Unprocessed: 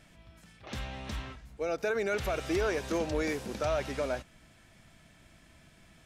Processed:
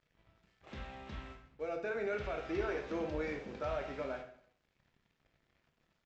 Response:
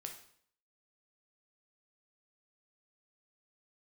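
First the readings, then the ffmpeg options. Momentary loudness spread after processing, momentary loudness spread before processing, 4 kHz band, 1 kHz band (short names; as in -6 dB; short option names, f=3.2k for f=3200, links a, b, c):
12 LU, 11 LU, -11.5 dB, -6.0 dB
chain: -filter_complex "[0:a]lowpass=3.1k,aresample=16000,aeval=exprs='sgn(val(0))*max(abs(val(0))-0.00158,0)':c=same,aresample=44100[a];[1:a]atrim=start_sample=2205[b];[a][b]afir=irnorm=-1:irlink=0,volume=-2.5dB"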